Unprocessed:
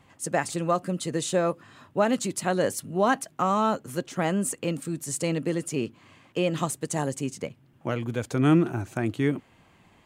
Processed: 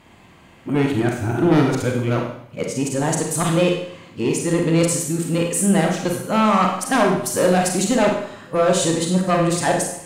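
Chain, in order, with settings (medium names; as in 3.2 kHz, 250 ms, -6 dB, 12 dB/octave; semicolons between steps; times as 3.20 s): reverse the whole clip; Chebyshev shaper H 5 -11 dB, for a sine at -9.5 dBFS; Schroeder reverb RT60 0.67 s, combs from 33 ms, DRR 1 dB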